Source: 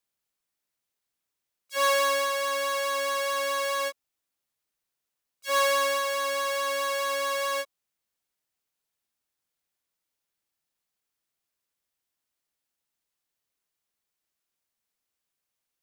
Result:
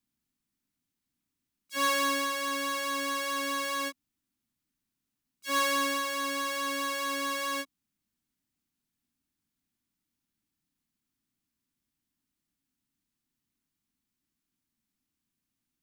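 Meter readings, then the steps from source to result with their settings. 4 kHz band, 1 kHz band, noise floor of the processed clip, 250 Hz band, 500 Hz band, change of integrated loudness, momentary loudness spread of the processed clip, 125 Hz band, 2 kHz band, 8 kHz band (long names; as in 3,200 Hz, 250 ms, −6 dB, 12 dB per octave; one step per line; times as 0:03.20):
−2.0 dB, −3.5 dB, below −85 dBFS, +14.5 dB, −9.0 dB, −3.5 dB, 7 LU, can't be measured, −2.5 dB, −2.0 dB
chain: low shelf with overshoot 360 Hz +11 dB, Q 3
level −2 dB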